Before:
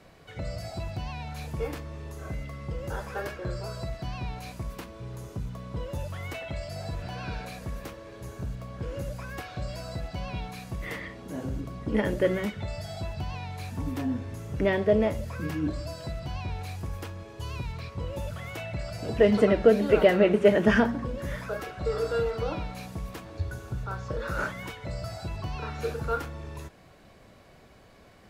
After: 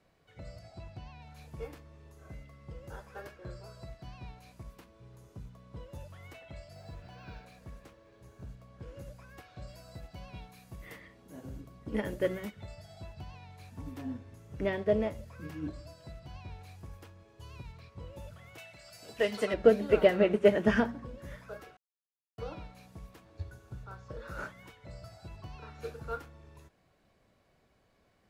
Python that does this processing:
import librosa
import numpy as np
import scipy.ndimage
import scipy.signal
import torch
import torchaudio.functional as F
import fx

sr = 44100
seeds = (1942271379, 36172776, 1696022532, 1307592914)

y = fx.air_absorb(x, sr, metres=52.0, at=(0.59, 1.22))
y = fx.resample_linear(y, sr, factor=2, at=(6.73, 8.49))
y = fx.high_shelf(y, sr, hz=11000.0, db=11.0, at=(9.67, 12.75))
y = fx.tilt_eq(y, sr, slope=3.5, at=(18.58, 19.54))
y = fx.edit(y, sr, fx.silence(start_s=21.77, length_s=0.61), tone=tone)
y = fx.upward_expand(y, sr, threshold_db=-39.0, expansion=1.5)
y = y * librosa.db_to_amplitude(-2.0)